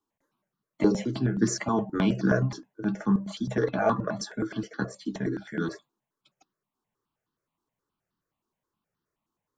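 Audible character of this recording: notches that jump at a steady rate 9.5 Hz 570–2300 Hz

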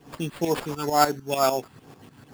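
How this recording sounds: tremolo saw up 6.7 Hz, depth 75%; phasing stages 6, 2.2 Hz, lowest notch 540–4300 Hz; aliases and images of a low sample rate 6000 Hz, jitter 0%

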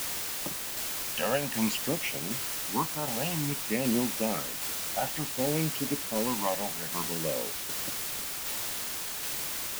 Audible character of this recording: phasing stages 12, 0.56 Hz, lowest notch 340–1500 Hz; a quantiser's noise floor 6-bit, dither triangular; tremolo saw down 1.3 Hz, depth 30%

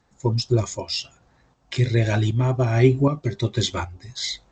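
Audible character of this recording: tremolo saw up 1.3 Hz, depth 55%; G.722

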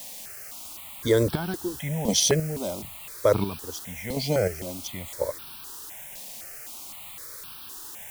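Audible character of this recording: chopped level 0.96 Hz, depth 65%, duty 30%; a quantiser's noise floor 8-bit, dither triangular; notches that jump at a steady rate 3.9 Hz 370–2000 Hz

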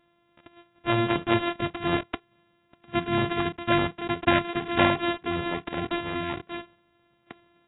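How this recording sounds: a buzz of ramps at a fixed pitch in blocks of 128 samples; tremolo saw down 2.6 Hz, depth 35%; AAC

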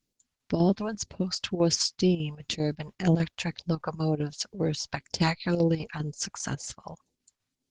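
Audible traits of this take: phasing stages 2, 2 Hz, lowest notch 280–1300 Hz; chopped level 5 Hz, depth 60%, duty 75%; Opus

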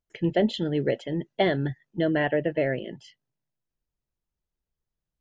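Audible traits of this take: noise floor -88 dBFS; spectral tilt -5.5 dB/oct

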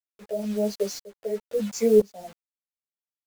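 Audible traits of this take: a quantiser's noise floor 6-bit, dither none; tremolo saw up 1 Hz, depth 95%; a shimmering, thickened sound

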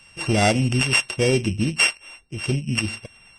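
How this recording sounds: a buzz of ramps at a fixed pitch in blocks of 16 samples; Vorbis

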